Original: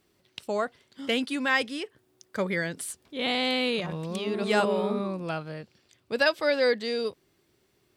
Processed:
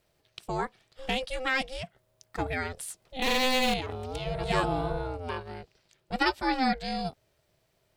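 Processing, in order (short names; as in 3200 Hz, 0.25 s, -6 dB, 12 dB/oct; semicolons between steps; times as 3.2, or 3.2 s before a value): 3.22–3.74 power-law curve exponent 0.5; ring modulator 260 Hz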